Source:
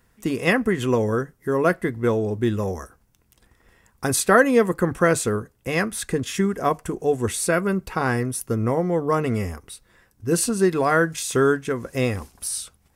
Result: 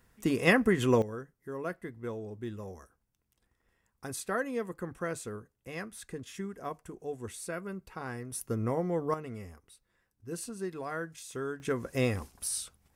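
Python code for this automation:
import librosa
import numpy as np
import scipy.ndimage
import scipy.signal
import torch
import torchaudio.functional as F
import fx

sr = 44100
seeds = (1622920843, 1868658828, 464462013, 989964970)

y = fx.gain(x, sr, db=fx.steps((0.0, -4.0), (1.02, -17.0), (8.32, -9.0), (9.14, -18.0), (11.6, -6.0)))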